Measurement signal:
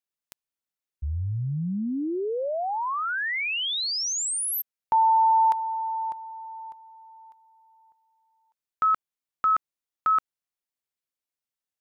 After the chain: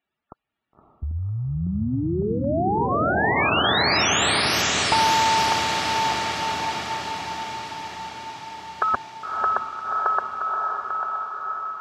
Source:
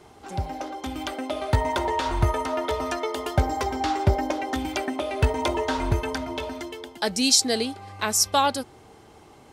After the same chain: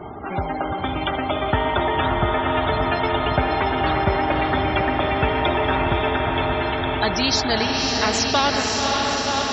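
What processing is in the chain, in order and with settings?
chunks repeated in reverse 555 ms, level -12 dB; distance through air 190 m; loudest bins only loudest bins 64; comb of notches 510 Hz; on a send: echo that smears into a reverb 558 ms, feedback 64%, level -5.5 dB; on the sum: dynamic bell 770 Hz, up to +4 dB, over -40 dBFS, Q 1.3; spectrum-flattening compressor 2:1; trim +3.5 dB

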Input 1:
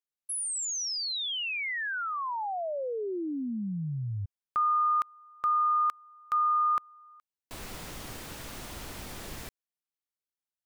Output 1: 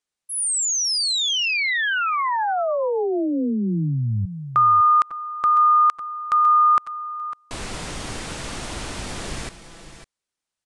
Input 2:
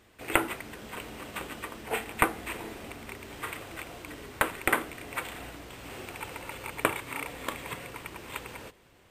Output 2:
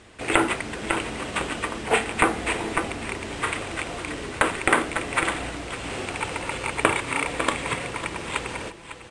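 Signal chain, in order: steep low-pass 10 kHz 48 dB/octave; multi-tap echo 547/553 ms -19/-13 dB; loudness maximiser +11.5 dB; trim -1 dB

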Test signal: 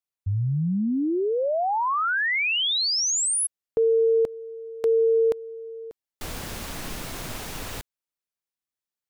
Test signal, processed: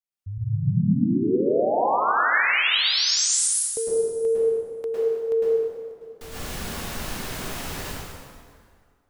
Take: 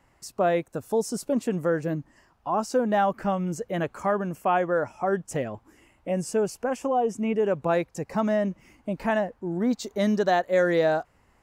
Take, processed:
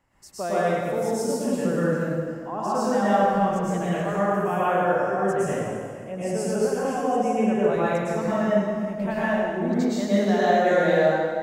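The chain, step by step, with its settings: plate-style reverb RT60 2 s, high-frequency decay 0.75×, pre-delay 95 ms, DRR -10 dB; trim -7.5 dB

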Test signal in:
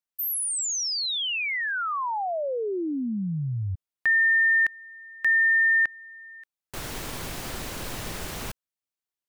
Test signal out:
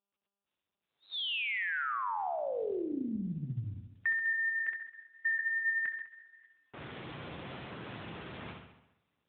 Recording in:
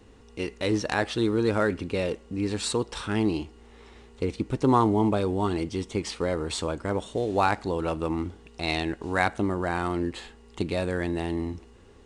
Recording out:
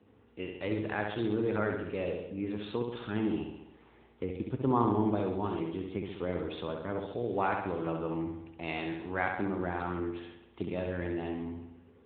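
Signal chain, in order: flutter echo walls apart 11.5 m, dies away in 0.9 s; level-controlled noise filter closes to 2.5 kHz, open at -21.5 dBFS; trim -7.5 dB; AMR-NB 10.2 kbps 8 kHz

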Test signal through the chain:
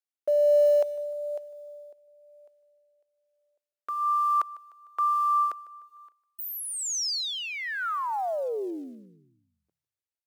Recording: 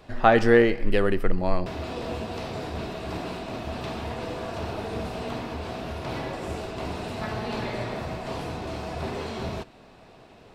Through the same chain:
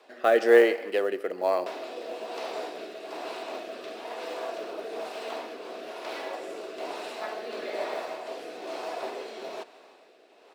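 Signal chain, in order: high-pass 360 Hz 24 dB/octave; dynamic bell 650 Hz, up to +5 dB, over -37 dBFS, Q 1.9; short-mantissa float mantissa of 4-bit; rotary cabinet horn 1.1 Hz; on a send: feedback delay 151 ms, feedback 49%, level -20.5 dB

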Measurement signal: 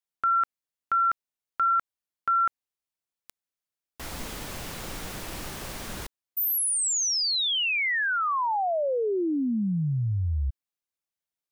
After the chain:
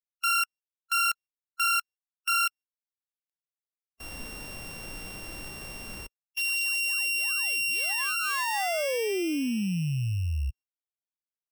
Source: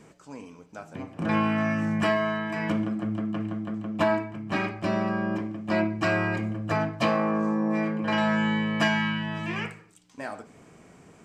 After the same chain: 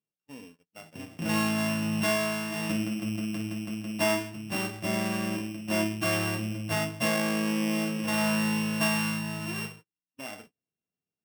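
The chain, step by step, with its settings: sorted samples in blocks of 16 samples; gate -44 dBFS, range -39 dB; harmonic-percussive split percussive -7 dB; trim -2 dB

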